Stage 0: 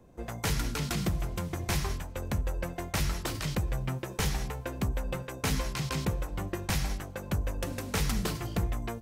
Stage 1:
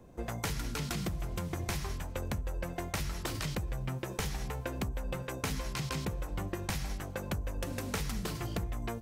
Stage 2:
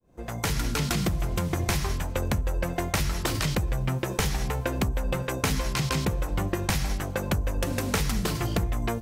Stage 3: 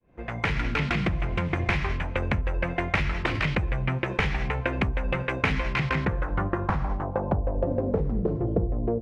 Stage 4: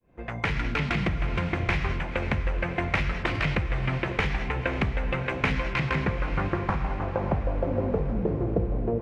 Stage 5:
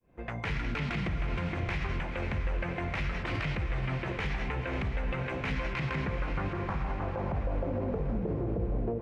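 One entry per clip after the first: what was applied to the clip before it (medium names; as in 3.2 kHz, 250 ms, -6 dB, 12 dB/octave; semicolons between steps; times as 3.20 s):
compression, threshold -34 dBFS, peak gain reduction 9.5 dB; trim +2 dB
fade-in on the opening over 0.57 s; trim +9 dB
low-pass sweep 2.3 kHz -> 480 Hz, 5.73–8.07 s
echo that smears into a reverb 550 ms, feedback 54%, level -10 dB; trim -1 dB
peak limiter -21 dBFS, peak gain reduction 10.5 dB; trim -2.5 dB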